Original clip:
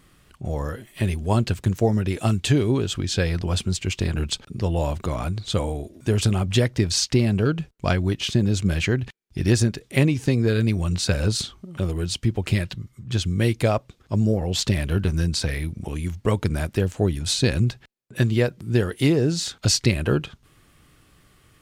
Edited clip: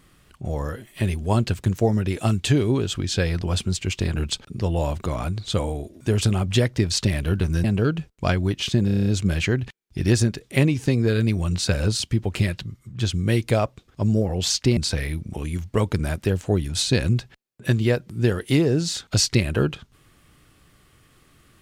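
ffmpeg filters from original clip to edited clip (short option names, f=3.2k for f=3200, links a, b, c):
-filter_complex "[0:a]asplit=13[a][b][c][d][e][f][g][h][i][j][k][l][m];[a]atrim=end=6.982[n];[b]atrim=start=14.618:end=15.282[o];[c]atrim=start=7.248:end=8.492[p];[d]atrim=start=8.458:end=8.492[q];[e]atrim=start=8.458:end=8.492[r];[f]atrim=start=8.458:end=8.492[s];[g]atrim=start=8.458:end=8.492[t];[h]atrim=start=8.458:end=8.492[u];[i]atrim=start=8.458:end=8.492[v];[j]atrim=start=8.458:end=11.402[w];[k]atrim=start=12.118:end=14.622[x];[l]atrim=start=6.978:end=7.252[y];[m]atrim=start=15.278[z];[n][o]acrossfade=d=0.004:c1=hsin:c2=hsin[aa];[aa][p]acrossfade=d=0.004:c1=hsin:c2=hsin[ab];[ab][q]acrossfade=d=0.004:c1=hsin:c2=hsin[ac];[ac][r]acrossfade=d=0.004:c1=hsin:c2=hsin[ad];[ad][s]acrossfade=d=0.004:c1=hsin:c2=hsin[ae];[ae][t]acrossfade=d=0.004:c1=hsin:c2=hsin[af];[af][u]acrossfade=d=0.004:c1=hsin:c2=hsin[ag];[ag][v]acrossfade=d=0.004:c1=hsin:c2=hsin[ah];[ah][w]acrossfade=d=0.004:c1=hsin:c2=hsin[ai];[ai][x]acrossfade=d=0.004:c1=hsin:c2=hsin[aj];[aj][y]acrossfade=d=0.004:c1=hsin:c2=hsin[ak];[ak][z]acrossfade=d=0.004:c1=hsin:c2=hsin"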